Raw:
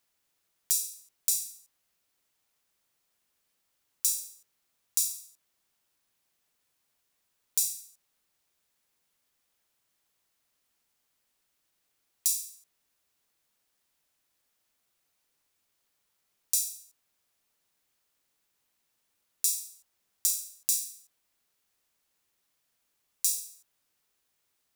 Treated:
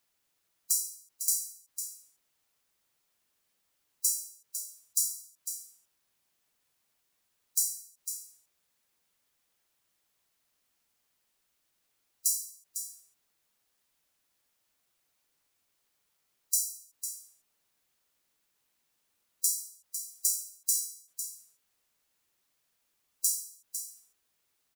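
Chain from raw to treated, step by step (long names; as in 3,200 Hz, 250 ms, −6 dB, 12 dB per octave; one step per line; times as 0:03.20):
gate on every frequency bin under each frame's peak −15 dB strong
single-tap delay 502 ms −9.5 dB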